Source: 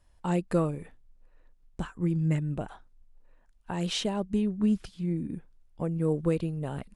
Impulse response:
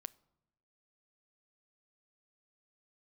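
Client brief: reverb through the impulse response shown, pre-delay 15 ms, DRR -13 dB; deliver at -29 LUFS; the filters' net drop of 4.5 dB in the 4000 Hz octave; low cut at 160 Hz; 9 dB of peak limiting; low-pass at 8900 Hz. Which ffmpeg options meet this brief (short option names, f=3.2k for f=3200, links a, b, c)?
-filter_complex "[0:a]highpass=160,lowpass=8.9k,equalizer=f=4k:t=o:g=-6,alimiter=limit=-23.5dB:level=0:latency=1,asplit=2[a][b];[1:a]atrim=start_sample=2205,adelay=15[c];[b][c]afir=irnorm=-1:irlink=0,volume=18dB[d];[a][d]amix=inputs=2:normalize=0,volume=-7.5dB"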